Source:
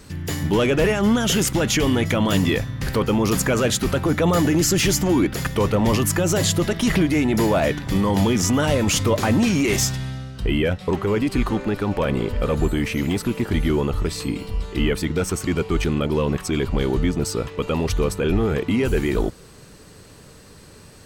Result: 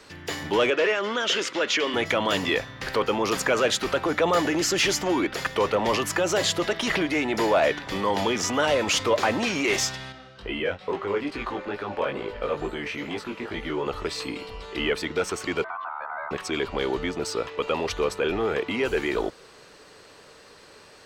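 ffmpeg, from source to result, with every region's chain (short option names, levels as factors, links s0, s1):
-filter_complex "[0:a]asettb=1/sr,asplit=3[s0][s1][s2];[s0]atrim=end=0.704[s3];[s1]atrim=start=0.7:end=1.94,asetpts=PTS-STARTPTS,afade=t=in:d=0.004:c=qsin,afade=t=out:st=1.236:d=0.004:c=qsin,highpass=310,lowpass=5700,equalizer=f=780:t=o:w=0.34:g=-9.5[s4];[s2]atrim=start=1.936[s5];[s3][s4]acrossfade=d=0.004:c1=hsin:c2=qsin[s6];[s6][s5]acrossfade=d=0.004:c1=qsin:c2=hsin,asettb=1/sr,asplit=3[s7][s8][s9];[s7]atrim=end=10.124[s10];[s8]atrim=start=10.12:end=13.86,asetpts=PTS-STARTPTS,afade=t=in:d=0.004:c=qsin,afade=t=out:st=3.736:d=0.004:c=qsin,highshelf=f=6000:g=-8,flanger=delay=18:depth=3.3:speed=2.3[s11];[s9]atrim=start=13.856[s12];[s10][s11]acrossfade=d=0.004:c1=hsin:c2=qsin[s13];[s13][s12]acrossfade=d=0.004:c1=qsin:c2=hsin,asettb=1/sr,asplit=3[s14][s15][s16];[s14]atrim=end=15.644[s17];[s15]atrim=start=15.64:end=16.31,asetpts=PTS-STARTPTS,afade=t=in:d=0.004:c=qsin,afade=t=out:st=0.666:d=0.004:c=qsin,lowpass=1000,acompressor=threshold=0.0355:ratio=6:attack=3.2:release=140:knee=1:detection=peak,aeval=exprs='val(0)*sin(2*PI*1100*n/s)':c=same[s18];[s16]atrim=start=16.306[s19];[s17][s18]acrossfade=d=0.004:c1=hsin:c2=qsin[s20];[s20][s19]acrossfade=d=0.004:c1=qsin:c2=hsin,acrossover=split=370 5900:gain=0.126 1 0.2[s21][s22][s23];[s21][s22][s23]amix=inputs=3:normalize=0,acontrast=40,volume=0.596"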